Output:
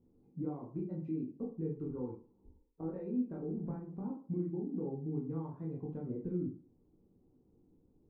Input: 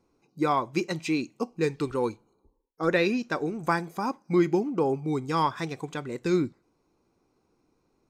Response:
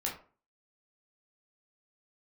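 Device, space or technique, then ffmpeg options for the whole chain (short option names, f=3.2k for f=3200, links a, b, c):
television next door: -filter_complex "[0:a]asettb=1/sr,asplit=3[a][b][c];[a]atrim=end=1.894[d];[b]atrim=start=1.89:end=3.18,asetpts=PTS-STARTPTS,afade=t=in:d=0.004:c=qsin,afade=t=out:st=1.286:d=0.004:c=qsin,equalizer=f=930:w=3.5:g=8.5[e];[c]atrim=start=3.176[f];[d][e]acrossfade=d=0.004:c1=hsin:c2=qsin[g];[g][f]acrossfade=d=0.004:c1=qsin:c2=hsin,acompressor=threshold=-39dB:ratio=4,lowpass=290[h];[1:a]atrim=start_sample=2205[i];[h][i]afir=irnorm=-1:irlink=0,volume=3dB"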